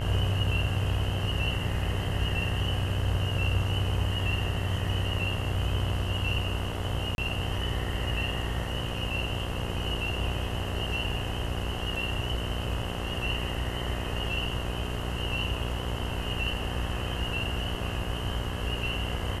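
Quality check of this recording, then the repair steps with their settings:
buzz 60 Hz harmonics 36 -34 dBFS
7.15–7.18 gap 31 ms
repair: de-hum 60 Hz, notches 36; interpolate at 7.15, 31 ms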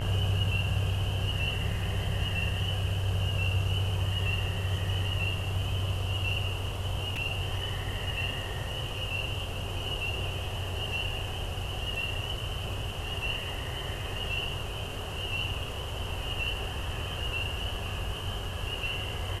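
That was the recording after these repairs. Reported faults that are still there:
none

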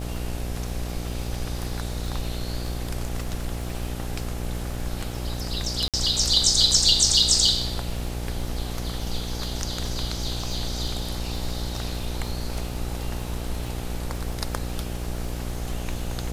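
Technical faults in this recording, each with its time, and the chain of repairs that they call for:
buzz 60 Hz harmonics 14 -31 dBFS
crackle 44/s -32 dBFS
5.88–5.94 gap 57 ms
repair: de-click; de-hum 60 Hz, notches 14; interpolate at 5.88, 57 ms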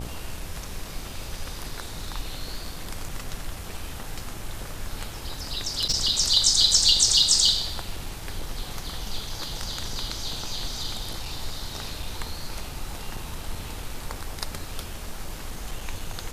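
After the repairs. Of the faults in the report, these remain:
none

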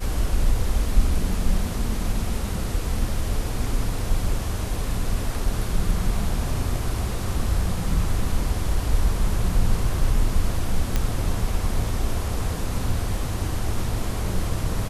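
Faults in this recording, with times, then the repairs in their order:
10.96 pop -8 dBFS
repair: de-click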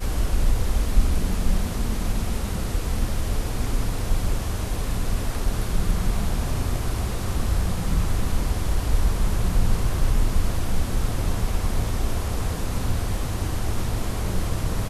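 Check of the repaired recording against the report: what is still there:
none

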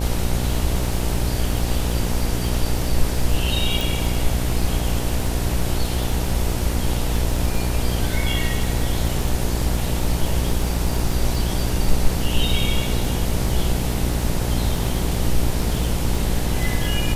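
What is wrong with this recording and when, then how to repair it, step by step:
buzz 60 Hz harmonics 16 -24 dBFS
crackle 26/s -25 dBFS
3.81 pop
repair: de-click; de-hum 60 Hz, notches 16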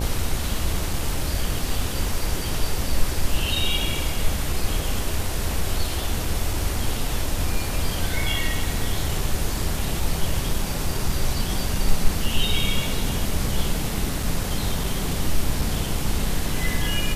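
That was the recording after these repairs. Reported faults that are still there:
3.81 pop

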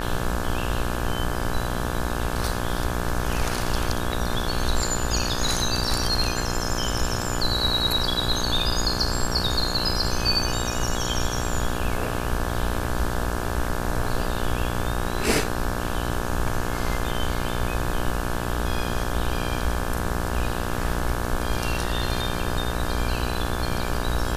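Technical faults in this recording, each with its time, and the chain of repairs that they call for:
buzz 60 Hz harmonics 29 -29 dBFS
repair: de-hum 60 Hz, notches 29

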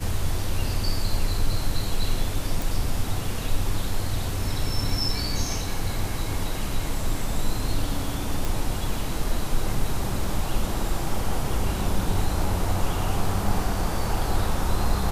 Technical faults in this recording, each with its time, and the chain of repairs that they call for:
2.62 pop
8.45 pop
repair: de-click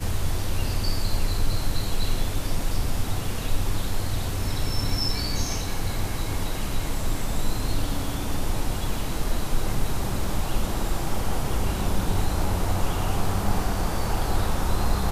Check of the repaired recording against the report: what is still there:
none

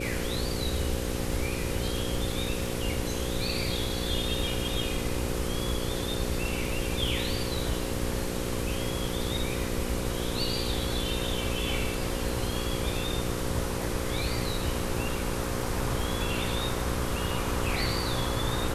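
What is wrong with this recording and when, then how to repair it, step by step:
buzz 60 Hz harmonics 9 -34 dBFS
crackle 21/s -36 dBFS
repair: de-click; de-hum 60 Hz, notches 9

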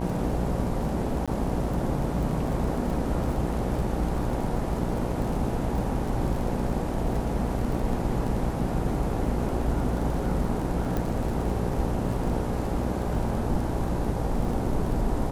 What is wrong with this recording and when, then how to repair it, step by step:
buzz 60 Hz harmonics 16 -31 dBFS
crackle 26/s -32 dBFS
1.26–1.28 gap 16 ms
10.97 pop -16 dBFS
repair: de-click; de-hum 60 Hz, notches 16; interpolate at 1.26, 16 ms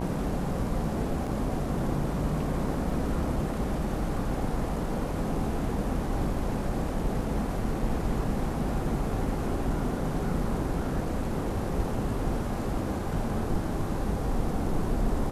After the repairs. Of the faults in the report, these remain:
none

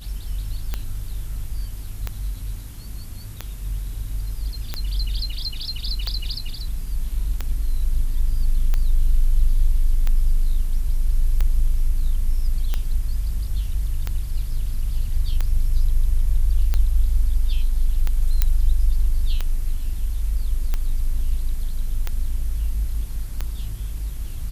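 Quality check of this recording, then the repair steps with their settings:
tick 45 rpm -11 dBFS
18.42 pop -4 dBFS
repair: de-click

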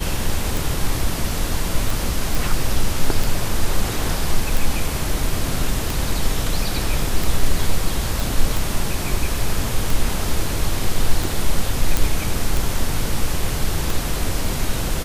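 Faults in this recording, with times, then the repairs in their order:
tick 45 rpm
2.35 pop
8.2 pop
11.97 pop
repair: de-click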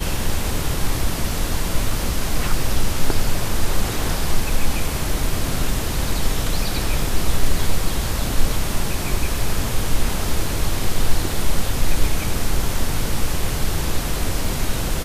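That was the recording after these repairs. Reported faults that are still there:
none

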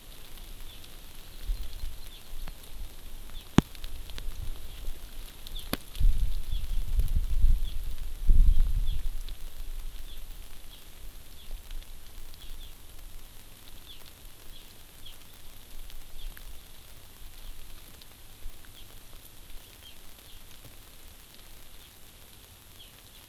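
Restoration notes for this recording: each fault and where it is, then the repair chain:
crackle 37/s -35 dBFS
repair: de-click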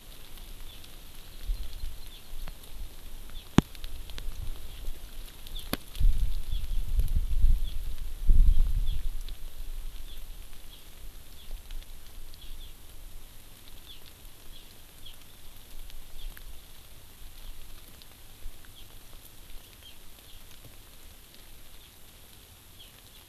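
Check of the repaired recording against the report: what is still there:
none

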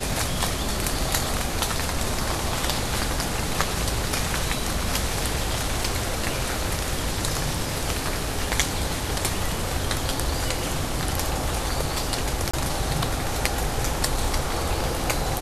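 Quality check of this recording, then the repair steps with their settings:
5.84 gap 3.5 ms
12.51–12.54 gap 25 ms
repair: interpolate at 5.84, 3.5 ms; interpolate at 12.51, 25 ms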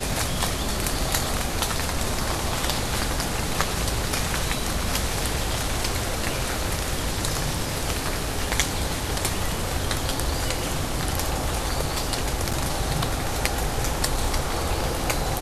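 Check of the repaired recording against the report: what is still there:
none

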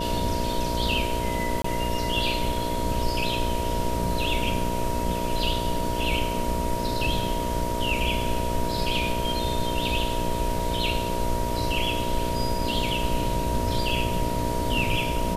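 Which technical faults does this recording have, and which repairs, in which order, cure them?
buzz 60 Hz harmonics 11 -31 dBFS
tone 950 Hz -30 dBFS
1.62–1.64 gap 24 ms
10.59 gap 2 ms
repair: de-hum 60 Hz, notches 11; notch 950 Hz, Q 30; interpolate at 1.62, 24 ms; interpolate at 10.59, 2 ms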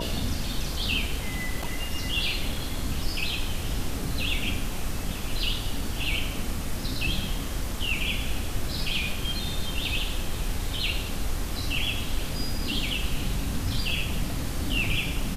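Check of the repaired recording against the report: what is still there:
none

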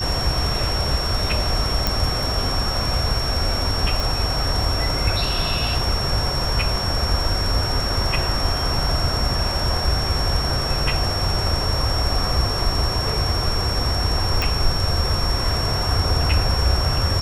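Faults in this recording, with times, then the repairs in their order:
tone 5500 Hz -25 dBFS
1.87 pop
4 pop
14.42 pop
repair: de-click; notch 5500 Hz, Q 30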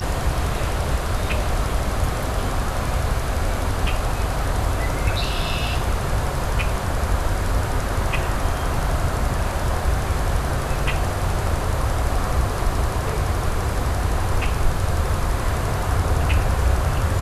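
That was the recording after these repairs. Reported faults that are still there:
none

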